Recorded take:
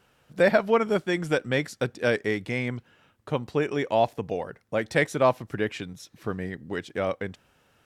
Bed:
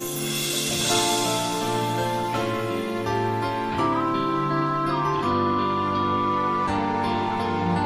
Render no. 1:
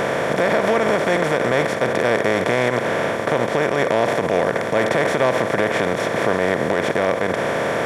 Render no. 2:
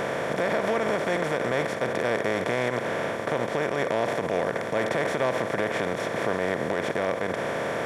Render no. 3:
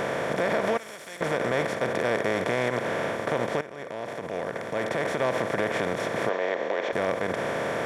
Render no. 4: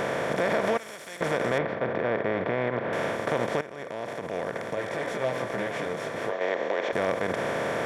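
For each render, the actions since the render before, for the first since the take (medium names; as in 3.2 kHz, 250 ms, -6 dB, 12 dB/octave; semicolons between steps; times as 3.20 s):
spectral levelling over time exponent 0.2; peak limiter -7.5 dBFS, peak gain reduction 8 dB
trim -7.5 dB
0.77–1.21 s: pre-emphasis filter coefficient 0.9; 3.61–5.41 s: fade in, from -15.5 dB; 6.29–6.93 s: cabinet simulation 400–5800 Hz, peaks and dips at 530 Hz +3 dB, 1.4 kHz -4 dB, 4.9 kHz -5 dB
1.58–2.93 s: distance through air 370 m; 4.75–6.41 s: detune thickener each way 10 cents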